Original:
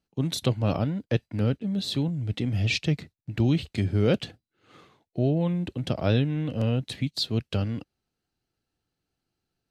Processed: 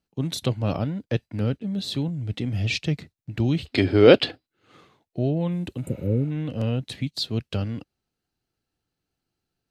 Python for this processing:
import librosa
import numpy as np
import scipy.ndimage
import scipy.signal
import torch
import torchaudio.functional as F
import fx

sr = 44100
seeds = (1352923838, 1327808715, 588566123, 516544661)

y = fx.spec_repair(x, sr, seeds[0], start_s=5.86, length_s=0.43, low_hz=570.0, high_hz=7000.0, source='before')
y = fx.high_shelf(y, sr, hz=7700.0, db=12.0, at=(5.52, 6.07))
y = fx.spec_box(y, sr, start_s=3.67, length_s=0.79, low_hz=250.0, high_hz=5400.0, gain_db=12)